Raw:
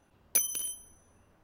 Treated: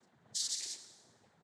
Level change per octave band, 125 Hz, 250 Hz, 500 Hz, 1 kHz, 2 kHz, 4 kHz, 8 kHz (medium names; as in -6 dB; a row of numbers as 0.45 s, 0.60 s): no reading, -9.0 dB, -14.0 dB, -10.5 dB, -10.5 dB, +5.0 dB, -8.0 dB